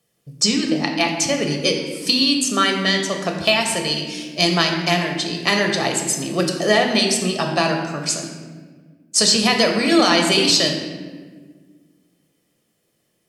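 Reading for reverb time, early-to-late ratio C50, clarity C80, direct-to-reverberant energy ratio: 1.5 s, 5.0 dB, 6.5 dB, 2.0 dB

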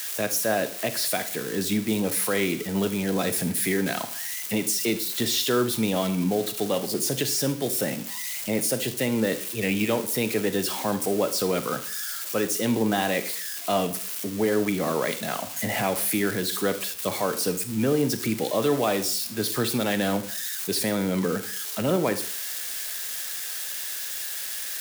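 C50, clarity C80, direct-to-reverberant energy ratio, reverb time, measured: 13.5 dB, 18.0 dB, 11.0 dB, 0.50 s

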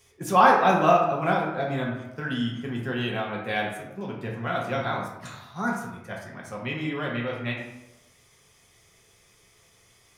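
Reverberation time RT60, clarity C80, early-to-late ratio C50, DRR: 0.95 s, 6.5 dB, 3.5 dB, −2.5 dB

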